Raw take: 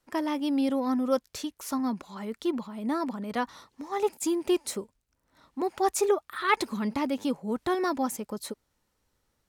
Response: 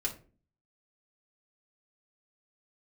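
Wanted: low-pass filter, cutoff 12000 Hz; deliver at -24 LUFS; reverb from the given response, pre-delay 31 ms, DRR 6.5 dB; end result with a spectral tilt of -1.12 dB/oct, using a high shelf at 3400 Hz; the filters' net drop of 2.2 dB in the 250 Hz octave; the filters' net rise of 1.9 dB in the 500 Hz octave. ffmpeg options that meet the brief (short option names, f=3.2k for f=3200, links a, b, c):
-filter_complex "[0:a]lowpass=12k,equalizer=f=250:t=o:g=-4.5,equalizer=f=500:t=o:g=4.5,highshelf=f=3.4k:g=-8.5,asplit=2[a][b];[1:a]atrim=start_sample=2205,adelay=31[c];[b][c]afir=irnorm=-1:irlink=0,volume=-9dB[d];[a][d]amix=inputs=2:normalize=0,volume=5dB"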